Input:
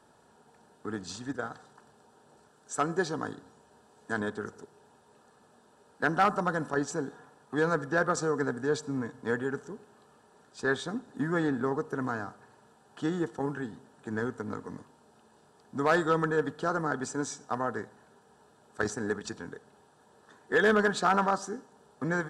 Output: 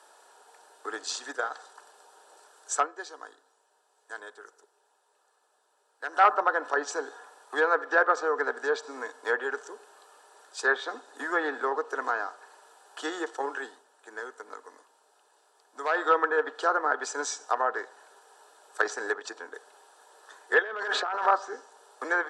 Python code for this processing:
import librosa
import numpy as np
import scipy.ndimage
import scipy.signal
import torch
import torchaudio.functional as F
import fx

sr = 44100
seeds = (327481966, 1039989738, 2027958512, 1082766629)

y = fx.high_shelf(x, sr, hz=2300.0, db=-9.5, at=(19.14, 19.54))
y = fx.over_compress(y, sr, threshold_db=-34.0, ratio=-1.0, at=(20.59, 21.26))
y = fx.edit(y, sr, fx.fade_down_up(start_s=2.77, length_s=3.48, db=-13.5, fade_s=0.14),
    fx.fade_down_up(start_s=13.65, length_s=2.45, db=-8.0, fade_s=0.19), tone=tone)
y = scipy.signal.sosfilt(scipy.signal.bessel(8, 650.0, 'highpass', norm='mag', fs=sr, output='sos'), y)
y = fx.env_lowpass_down(y, sr, base_hz=2300.0, full_db=-29.5)
y = fx.high_shelf(y, sr, hz=6700.0, db=5.0)
y = y * librosa.db_to_amplitude(7.5)